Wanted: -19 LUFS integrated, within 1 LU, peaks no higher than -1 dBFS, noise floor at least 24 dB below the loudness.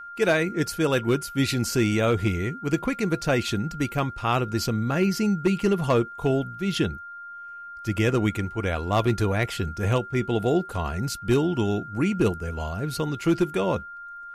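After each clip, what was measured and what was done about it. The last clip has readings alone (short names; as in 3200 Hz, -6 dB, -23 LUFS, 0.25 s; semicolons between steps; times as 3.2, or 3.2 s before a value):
clipped 0.3%; flat tops at -13.5 dBFS; steady tone 1400 Hz; tone level -37 dBFS; loudness -25.0 LUFS; peak -13.5 dBFS; loudness target -19.0 LUFS
-> clip repair -13.5 dBFS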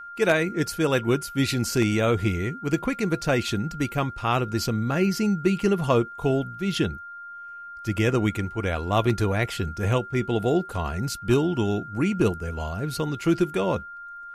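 clipped 0.0%; steady tone 1400 Hz; tone level -37 dBFS
-> notch 1400 Hz, Q 30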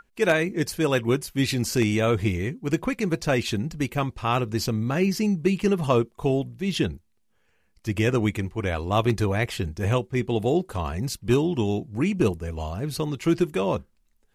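steady tone none; loudness -25.0 LUFS; peak -7.5 dBFS; loudness target -19.0 LUFS
-> gain +6 dB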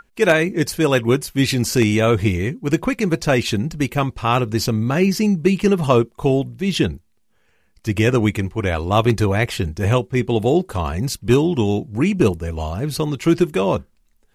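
loudness -19.0 LUFS; peak -1.5 dBFS; noise floor -61 dBFS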